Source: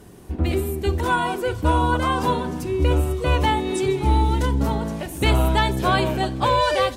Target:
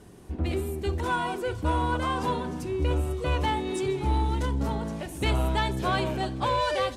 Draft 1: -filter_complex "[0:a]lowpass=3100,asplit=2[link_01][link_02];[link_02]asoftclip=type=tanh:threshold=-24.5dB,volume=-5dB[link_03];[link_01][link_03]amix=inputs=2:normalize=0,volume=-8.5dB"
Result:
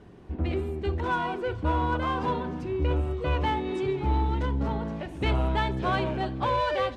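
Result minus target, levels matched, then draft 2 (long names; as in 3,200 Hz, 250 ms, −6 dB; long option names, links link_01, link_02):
8,000 Hz band −14.0 dB
-filter_complex "[0:a]lowpass=11000,asplit=2[link_01][link_02];[link_02]asoftclip=type=tanh:threshold=-24.5dB,volume=-5dB[link_03];[link_01][link_03]amix=inputs=2:normalize=0,volume=-8.5dB"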